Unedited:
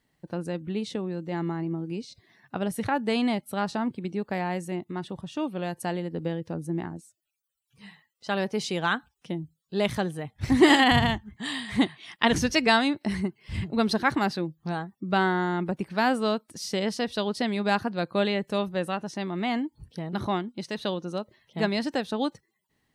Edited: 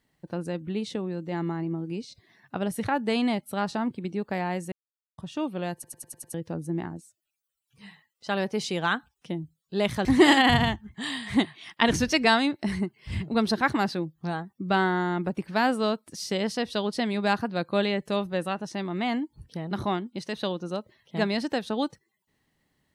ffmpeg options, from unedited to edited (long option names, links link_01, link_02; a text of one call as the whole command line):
ffmpeg -i in.wav -filter_complex "[0:a]asplit=10[link_01][link_02][link_03][link_04][link_05][link_06][link_07][link_08][link_09][link_10];[link_01]atrim=end=4.72,asetpts=PTS-STARTPTS,afade=type=out:start_time=4.716:duration=0.004:curve=hsin[link_11];[link_02]atrim=start=4.72:end=5.18,asetpts=PTS-STARTPTS,volume=0[link_12];[link_03]atrim=start=5.18:end=5.842,asetpts=PTS-STARTPTS,afade=type=in:duration=0.004:curve=hsin[link_13];[link_04]atrim=start=5.738:end=5.842[link_14];[link_05]atrim=start=5.738:end=5.842[link_15];[link_06]atrim=start=5.738:end=5.842[link_16];[link_07]atrim=start=5.738:end=5.842[link_17];[link_08]atrim=start=5.738:end=5.842[link_18];[link_09]atrim=start=6.338:end=10.052[link_19];[link_10]atrim=start=10.468[link_20];[link_11][link_12][link_13]concat=n=3:v=0:a=1[link_21];[link_21][link_14]acrossfade=duration=0.004:curve1=hsin:curve2=hsin[link_22];[link_22][link_15]acrossfade=duration=0.004:curve1=hsin:curve2=hsin[link_23];[link_23][link_16]acrossfade=duration=0.004:curve1=hsin:curve2=hsin[link_24];[link_24][link_17]acrossfade=duration=0.004:curve1=hsin:curve2=hsin[link_25];[link_25][link_18]acrossfade=duration=0.004:curve1=hsin:curve2=hsin[link_26];[link_26][link_19]acrossfade=duration=0.004:curve1=hsin:curve2=hsin[link_27];[link_27][link_20]acrossfade=duration=0.004:curve1=hsin:curve2=hsin" out.wav